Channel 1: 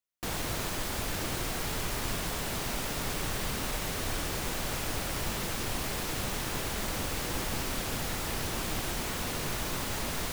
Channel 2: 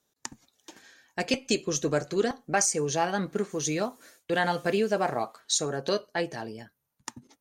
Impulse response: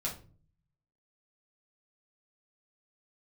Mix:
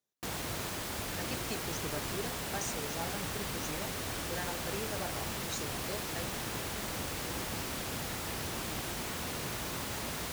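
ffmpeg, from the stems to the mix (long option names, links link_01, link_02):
-filter_complex "[0:a]volume=-3.5dB[link_01];[1:a]volume=-15dB[link_02];[link_01][link_02]amix=inputs=2:normalize=0,highpass=58"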